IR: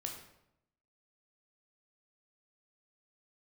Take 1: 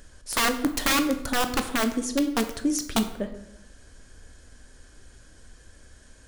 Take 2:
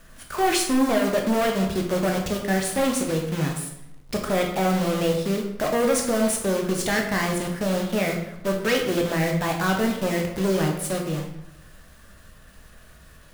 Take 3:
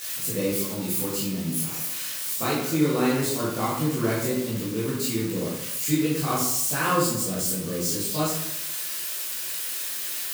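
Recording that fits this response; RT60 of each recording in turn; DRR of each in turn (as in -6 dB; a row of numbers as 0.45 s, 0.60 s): 2; 0.80 s, 0.80 s, 0.80 s; 7.5 dB, 1.5 dB, -8.0 dB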